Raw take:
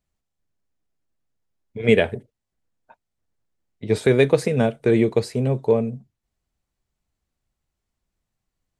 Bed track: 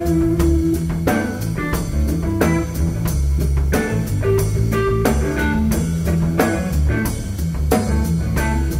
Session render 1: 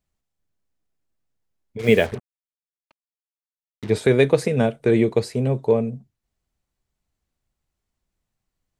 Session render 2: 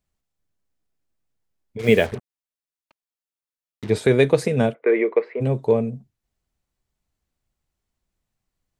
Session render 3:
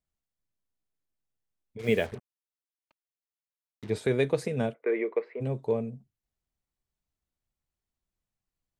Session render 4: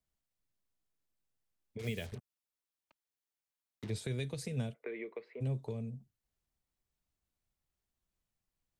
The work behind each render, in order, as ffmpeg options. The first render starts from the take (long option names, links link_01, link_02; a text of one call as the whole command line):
ffmpeg -i in.wav -filter_complex "[0:a]asettb=1/sr,asplit=3[link_01][link_02][link_03];[link_01]atrim=end=1.794[link_04];[link_02]atrim=start=1.79:end=3.9,asetpts=PTS-STARTPTS,afade=type=in:duration=0.004:curve=qsin,afade=type=out:start_time=2.106:duration=0.004:curve=qsin,acrusher=bits=5:mix=0:aa=0.5[link_05];[link_03]atrim=start=3.896[link_06];[link_04][link_05]acrossfade=duration=0.004:curve1=hsin:curve2=qsin[link_07];[link_07][link_06]acrossfade=duration=0.004:curve1=qsin:curve2=hsin" out.wav
ffmpeg -i in.wav -filter_complex "[0:a]asplit=3[link_01][link_02][link_03];[link_01]afade=type=out:start_time=4.73:duration=0.02[link_04];[link_02]highpass=frequency=340:width=0.5412,highpass=frequency=340:width=1.3066,equalizer=frequency=490:width_type=q:width=4:gain=3,equalizer=frequency=770:width_type=q:width=4:gain=-4,equalizer=frequency=1100:width_type=q:width=4:gain=5,equalizer=frequency=2100:width_type=q:width=4:gain=9,lowpass=frequency=2300:width=0.5412,lowpass=frequency=2300:width=1.3066,afade=type=in:start_time=4.73:duration=0.02,afade=type=out:start_time=5.4:duration=0.02[link_05];[link_03]afade=type=in:start_time=5.4:duration=0.02[link_06];[link_04][link_05][link_06]amix=inputs=3:normalize=0" out.wav
ffmpeg -i in.wav -af "volume=-9.5dB" out.wav
ffmpeg -i in.wav -filter_complex "[0:a]alimiter=limit=-17.5dB:level=0:latency=1:release=109,acrossover=split=170|3000[link_01][link_02][link_03];[link_02]acompressor=threshold=-43dB:ratio=6[link_04];[link_01][link_04][link_03]amix=inputs=3:normalize=0" out.wav